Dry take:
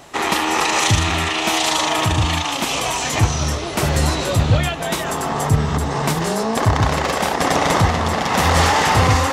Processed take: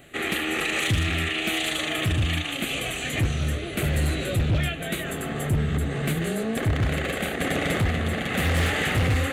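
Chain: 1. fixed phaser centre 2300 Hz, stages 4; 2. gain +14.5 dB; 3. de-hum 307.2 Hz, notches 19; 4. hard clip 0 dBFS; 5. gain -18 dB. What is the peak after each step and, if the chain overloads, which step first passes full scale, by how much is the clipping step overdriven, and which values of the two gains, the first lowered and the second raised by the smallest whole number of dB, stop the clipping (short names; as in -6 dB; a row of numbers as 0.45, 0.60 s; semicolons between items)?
-5.0, +9.5, +9.5, 0.0, -18.0 dBFS; step 2, 9.5 dB; step 2 +4.5 dB, step 5 -8 dB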